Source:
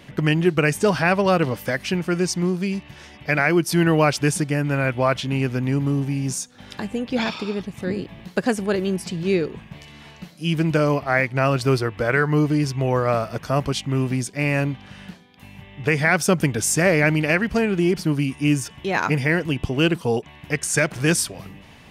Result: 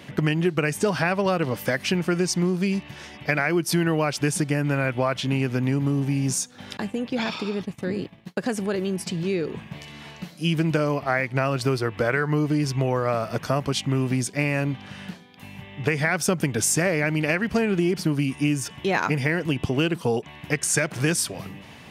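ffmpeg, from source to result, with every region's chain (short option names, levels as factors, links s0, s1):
-filter_complex "[0:a]asettb=1/sr,asplit=3[s0][s1][s2];[s0]atrim=end=6.774[s3];[s1]atrim=start=6.77:end=9.48,asetpts=PTS-STARTPTS,afade=t=in:d=0.004:c=qsin,afade=t=out:st=2.706:d=0.004:c=qsin,agate=range=0.0224:threshold=0.0251:ratio=3:release=100:detection=peak,acompressor=threshold=0.0398:ratio=2:attack=3.2:release=140:knee=1:detection=peak[s4];[s2]atrim=start=9.476[s5];[s3][s4]acrossfade=d=0.004:c1=hsin:c2=qsin[s6];[s6][s5]acrossfade=d=0.004:c1=qsin:c2=hsin,highpass=90,acompressor=threshold=0.0891:ratio=6,volume=1.33"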